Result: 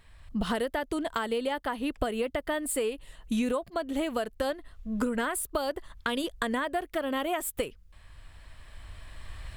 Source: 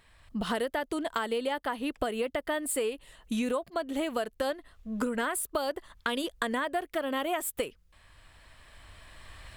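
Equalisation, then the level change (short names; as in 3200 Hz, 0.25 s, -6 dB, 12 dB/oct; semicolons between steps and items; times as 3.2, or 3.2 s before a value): low shelf 130 Hz +10 dB; 0.0 dB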